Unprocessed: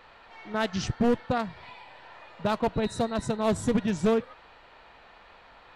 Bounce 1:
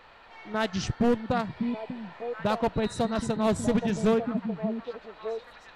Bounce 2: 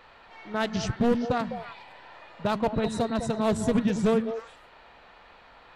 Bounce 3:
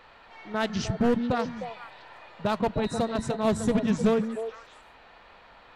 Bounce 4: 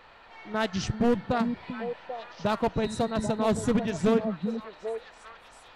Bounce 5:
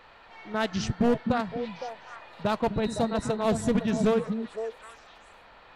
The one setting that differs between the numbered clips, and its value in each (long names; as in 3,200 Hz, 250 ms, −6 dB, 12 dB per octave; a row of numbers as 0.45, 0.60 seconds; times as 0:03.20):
echo through a band-pass that steps, delay time: 596, 102, 153, 394, 255 milliseconds